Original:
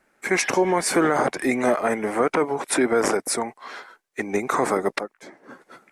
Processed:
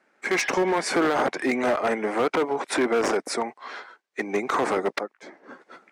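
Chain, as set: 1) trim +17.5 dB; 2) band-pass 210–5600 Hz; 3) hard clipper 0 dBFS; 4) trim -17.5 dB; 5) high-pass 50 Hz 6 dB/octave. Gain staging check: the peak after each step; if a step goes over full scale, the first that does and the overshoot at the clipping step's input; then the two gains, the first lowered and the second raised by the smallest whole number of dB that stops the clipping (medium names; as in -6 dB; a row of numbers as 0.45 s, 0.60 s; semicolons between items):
+9.0 dBFS, +9.0 dBFS, 0.0 dBFS, -17.5 dBFS, -16.0 dBFS; step 1, 9.0 dB; step 1 +8.5 dB, step 4 -8.5 dB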